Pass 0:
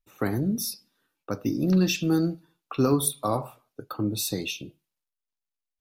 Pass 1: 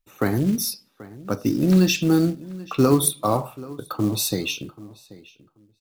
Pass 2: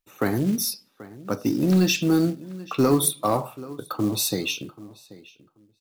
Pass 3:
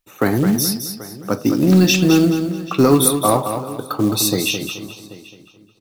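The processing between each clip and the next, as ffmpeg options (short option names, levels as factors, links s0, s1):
-filter_complex "[0:a]asplit=2[s0][s1];[s1]adelay=784,lowpass=f=2800:p=1,volume=0.112,asplit=2[s2][s3];[s3]adelay=784,lowpass=f=2800:p=1,volume=0.17[s4];[s0][s2][s4]amix=inputs=3:normalize=0,acrusher=bits=6:mode=log:mix=0:aa=0.000001,volume=1.78"
-af "lowshelf=f=81:g=-11,asoftclip=type=tanh:threshold=0.355"
-af "aecho=1:1:214|428|642|856:0.398|0.123|0.0383|0.0119,volume=2.11"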